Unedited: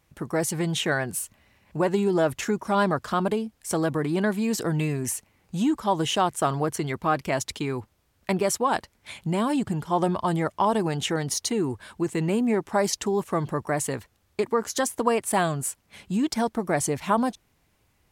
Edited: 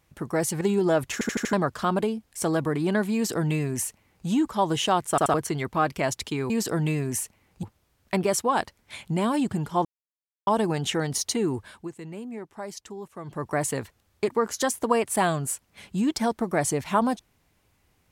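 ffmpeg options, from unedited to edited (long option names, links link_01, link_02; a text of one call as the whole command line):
ffmpeg -i in.wav -filter_complex "[0:a]asplit=16[link_01][link_02][link_03][link_04][link_05][link_06][link_07][link_08][link_09][link_10][link_11][link_12][link_13][link_14][link_15][link_16];[link_01]atrim=end=0.612[link_17];[link_02]atrim=start=1.898:end=2.502[link_18];[link_03]atrim=start=2.418:end=2.502[link_19];[link_04]atrim=start=2.418:end=2.502[link_20];[link_05]atrim=start=2.418:end=2.502[link_21];[link_06]atrim=start=2.418:end=2.502[link_22];[link_07]atrim=start=2.818:end=6.472[link_23];[link_08]atrim=start=6.388:end=6.472[link_24];[link_09]atrim=start=6.388:end=6.472[link_25];[link_10]atrim=start=6.628:end=7.792[link_26];[link_11]atrim=start=4.428:end=5.562[link_27];[link_12]atrim=start=7.788:end=10.01,asetpts=PTS-STARTPTS,afade=type=out:start_time=2.218:duration=0.004:curve=hsin[link_28];[link_13]atrim=start=10.01:end=10.63,asetpts=PTS-STARTPTS,volume=0[link_29];[link_14]atrim=start=10.63:end=12.08,asetpts=PTS-STARTPTS,afade=type=in:duration=0.004:curve=hsin,afade=type=out:start_time=1.14:duration=0.31:silence=0.211349[link_30];[link_15]atrim=start=12.08:end=13.39,asetpts=PTS-STARTPTS,volume=-13.5dB[link_31];[link_16]atrim=start=13.39,asetpts=PTS-STARTPTS,afade=type=in:duration=0.31:silence=0.211349[link_32];[link_17][link_18]acrossfade=duration=0.004:curve1=hsin:curve2=hsin[link_33];[link_33][link_19]acrossfade=duration=0.004:curve1=hsin:curve2=hsin[link_34];[link_34][link_20]acrossfade=duration=0.004:curve1=hsin:curve2=hsin[link_35];[link_35][link_21]acrossfade=duration=0.004:curve1=hsin:curve2=hsin[link_36];[link_36][link_22]acrossfade=duration=0.004:curve1=hsin:curve2=hsin[link_37];[link_37][link_23]acrossfade=duration=0.004:curve1=hsin:curve2=hsin[link_38];[link_38][link_24]acrossfade=duration=0.004:curve1=hsin:curve2=hsin[link_39];[link_39][link_25]acrossfade=duration=0.004:curve1=hsin:curve2=hsin[link_40];[link_40][link_26]acrossfade=duration=0.004:curve1=hsin:curve2=hsin[link_41];[link_41][link_27]acrossfade=duration=0.004:curve1=hsin:curve2=hsin[link_42];[link_28][link_29][link_30][link_31][link_32]concat=n=5:v=0:a=1[link_43];[link_42][link_43]acrossfade=duration=0.004:curve1=hsin:curve2=hsin" out.wav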